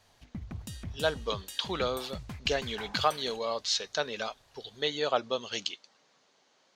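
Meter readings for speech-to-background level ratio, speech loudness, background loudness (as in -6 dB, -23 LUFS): 11.5 dB, -32.0 LUFS, -43.5 LUFS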